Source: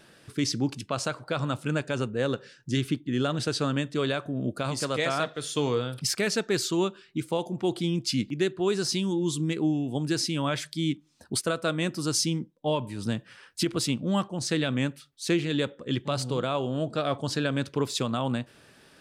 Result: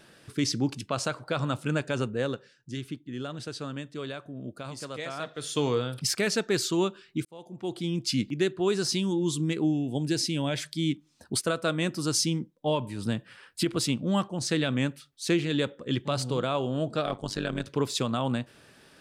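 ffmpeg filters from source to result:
-filter_complex "[0:a]asettb=1/sr,asplit=3[a][b][c];[a]atrim=end=9.644[d];[b]atrim=start=9.64:end=10.58,asetpts=PTS-STARTPTS,afade=t=in:d=0.004:c=qsin,afade=t=out:st=0.936:d=0.004:c=qsin,equalizer=f=1.2k:t=o:w=0.47:g=-14[e];[c]atrim=start=10.576[f];[d][e]acrossfade=d=0.004:c1=hsin:c2=qsin[g];[g][f]acrossfade=d=0.004:c1=qsin:c2=hsin,asettb=1/sr,asplit=3[h][i][j];[h]atrim=end=13.014[k];[i]atrim=start=13.01:end=13.72,asetpts=PTS-STARTPTS,afade=t=in:d=0.004:c=qsin,afade=t=out:st=0.706:d=0.004:c=qsin,equalizer=f=6k:w=3.5:g=-7[l];[j]atrim=start=13.716[m];[k][l]acrossfade=d=0.004:c1=hsin:c2=qsin[n];[n][m]acrossfade=d=0.004:c1=qsin:c2=hsin,asettb=1/sr,asplit=3[o][p][q];[o]atrim=end=17.064[r];[p]atrim=start=17.06:end=17.67,asetpts=PTS-STARTPTS,afade=t=in:d=0.004:c=qsin,afade=t=out:st=0.606:d=0.004:c=qsin,tremolo=f=100:d=0.889[s];[q]atrim=start=17.666[t];[r][s]acrossfade=d=0.004:c1=hsin:c2=qsin[u];[u][t]acrossfade=d=0.004:c1=qsin:c2=hsin,asplit=4[v][w][x][y];[v]atrim=end=2.49,asetpts=PTS-STARTPTS,afade=t=out:st=2.12:d=0.37:silence=0.354813[z];[w]atrim=start=2.49:end=5.17,asetpts=PTS-STARTPTS,volume=-9dB[aa];[x]atrim=start=5.17:end=7.25,asetpts=PTS-STARTPTS,afade=t=in:d=0.37:silence=0.354813,afade=t=out:st=2.076:d=0.004:c=hsin[ab];[y]atrim=start=7.25,asetpts=PTS-STARTPTS,afade=t=in:d=0.87[ac];[z][aa][ab][ac]concat=n=4:v=0:a=1"

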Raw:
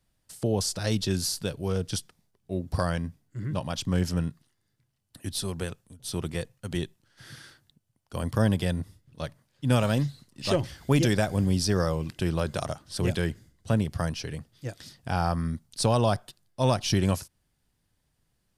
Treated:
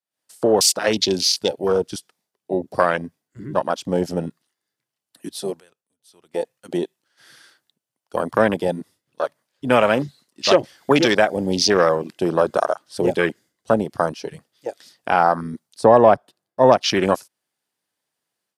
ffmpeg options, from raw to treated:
-filter_complex "[0:a]asplit=3[a][b][c];[a]afade=t=out:st=15.8:d=0.02[d];[b]tiltshelf=f=1.4k:g=6.5,afade=t=in:st=15.8:d=0.02,afade=t=out:st=16.76:d=0.02[e];[c]afade=t=in:st=16.76:d=0.02[f];[d][e][f]amix=inputs=3:normalize=0,asplit=3[g][h][i];[g]atrim=end=5.6,asetpts=PTS-STARTPTS,afade=t=out:st=5.29:d=0.31:c=log:silence=0.158489[j];[h]atrim=start=5.6:end=6.34,asetpts=PTS-STARTPTS,volume=-16dB[k];[i]atrim=start=6.34,asetpts=PTS-STARTPTS,afade=t=in:d=0.31:c=log:silence=0.158489[l];[j][k][l]concat=n=3:v=0:a=1,highpass=400,afwtdn=0.0178,dynaudnorm=f=100:g=3:m=15.5dB"

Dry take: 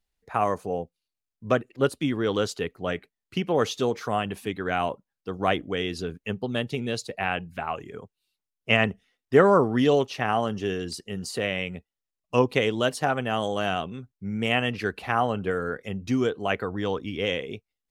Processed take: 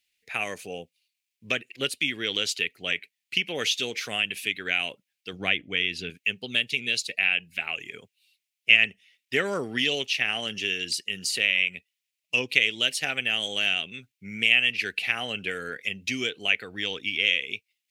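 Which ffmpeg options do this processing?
-filter_complex "[0:a]asettb=1/sr,asplit=3[a][b][c];[a]atrim=end=5.334[d];[b]atrim=start=5.33:end=6.1,asetpts=PTS-STARTPTS,afade=t=in:d=0.004:c=qsin,afade=t=out:st=0.766:d=0.004:c=qsin,bass=f=250:g=6,treble=f=4k:g=-9[e];[c]atrim=start=6.096[f];[d][e]acrossfade=d=0.004:c1=hsin:c2=qsin[g];[g][f]acrossfade=d=0.004:c1=qsin:c2=hsin,highpass=f=180:p=1,highshelf=f=1.6k:t=q:w=3:g=14,acompressor=threshold=-22dB:ratio=1.5,volume=-5.5dB"

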